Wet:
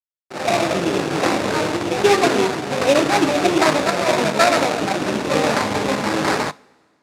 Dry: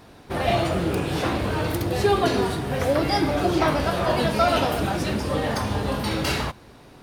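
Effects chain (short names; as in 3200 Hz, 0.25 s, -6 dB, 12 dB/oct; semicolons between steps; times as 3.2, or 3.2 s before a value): AGC gain up to 10.5 dB; sample-rate reducer 3100 Hz, jitter 20%; crossover distortion -29 dBFS; BPF 220–7800 Hz; two-slope reverb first 0.3 s, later 1.9 s, from -18 dB, DRR 18 dB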